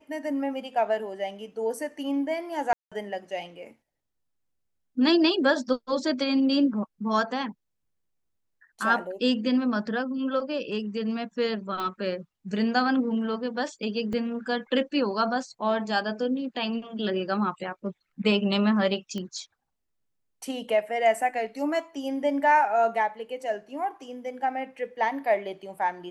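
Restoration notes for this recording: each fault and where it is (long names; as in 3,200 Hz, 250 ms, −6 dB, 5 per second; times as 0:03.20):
0:02.73–0:02.92: drop-out 186 ms
0:11.80: click −19 dBFS
0:14.13: drop-out 3.4 ms
0:19.18: click −22 dBFS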